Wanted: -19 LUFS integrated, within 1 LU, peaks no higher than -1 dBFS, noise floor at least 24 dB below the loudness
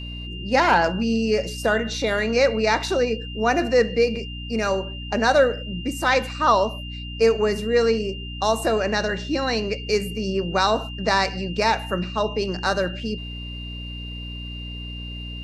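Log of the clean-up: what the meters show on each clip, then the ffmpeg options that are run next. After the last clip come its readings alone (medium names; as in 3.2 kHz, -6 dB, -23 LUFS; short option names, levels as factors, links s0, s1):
hum 60 Hz; highest harmonic 300 Hz; hum level -32 dBFS; steady tone 2.8 kHz; tone level -36 dBFS; loudness -22.0 LUFS; peak level -5.0 dBFS; loudness target -19.0 LUFS
-> -af "bandreject=f=60:t=h:w=6,bandreject=f=120:t=h:w=6,bandreject=f=180:t=h:w=6,bandreject=f=240:t=h:w=6,bandreject=f=300:t=h:w=6"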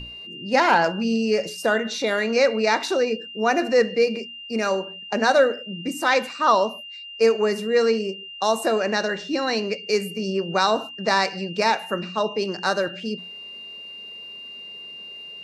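hum not found; steady tone 2.8 kHz; tone level -36 dBFS
-> -af "bandreject=f=2800:w=30"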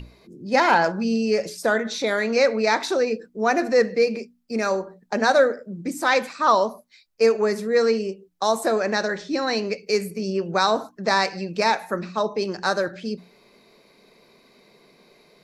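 steady tone not found; loudness -22.5 LUFS; peak level -5.0 dBFS; loudness target -19.0 LUFS
-> -af "volume=1.5"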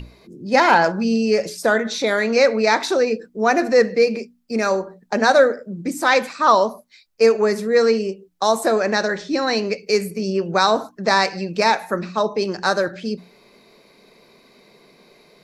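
loudness -19.0 LUFS; peak level -1.5 dBFS; noise floor -55 dBFS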